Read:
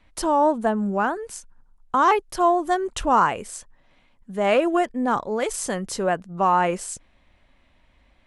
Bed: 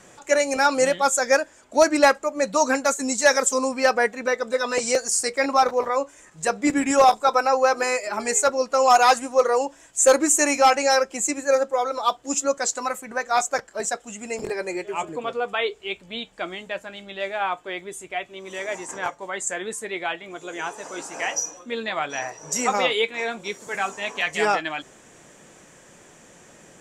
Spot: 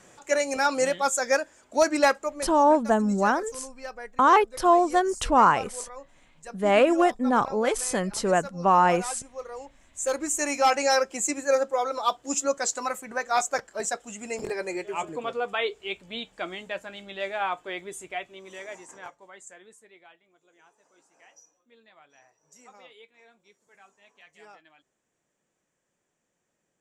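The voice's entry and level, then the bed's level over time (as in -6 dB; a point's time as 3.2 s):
2.25 s, 0.0 dB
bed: 2.29 s -4.5 dB
2.57 s -19.5 dB
9.45 s -19.5 dB
10.81 s -3 dB
18.05 s -3 dB
20.37 s -29.5 dB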